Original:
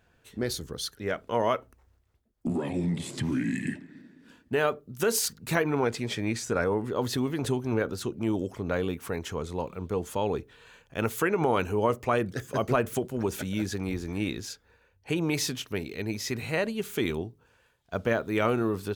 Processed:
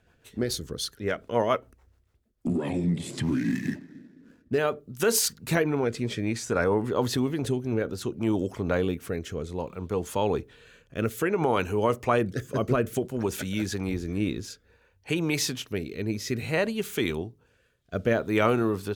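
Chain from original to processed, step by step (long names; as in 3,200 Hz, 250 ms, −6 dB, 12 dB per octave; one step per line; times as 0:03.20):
0:03.23–0:04.58: running median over 15 samples
rotating-speaker cabinet horn 7 Hz, later 0.6 Hz, at 0:02.10
level +3.5 dB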